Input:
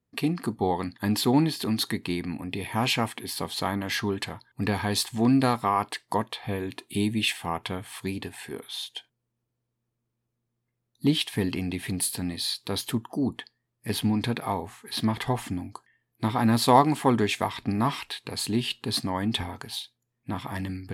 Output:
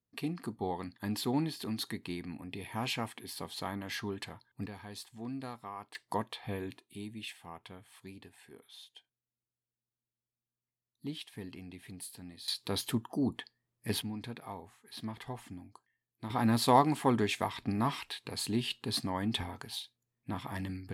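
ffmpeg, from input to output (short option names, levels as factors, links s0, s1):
-af "asetnsamples=n=441:p=0,asendcmd='4.66 volume volume -19.5dB;5.95 volume volume -7.5dB;6.78 volume volume -17.5dB;12.48 volume volume -4.5dB;14.02 volume volume -15dB;16.3 volume volume -6dB',volume=0.316"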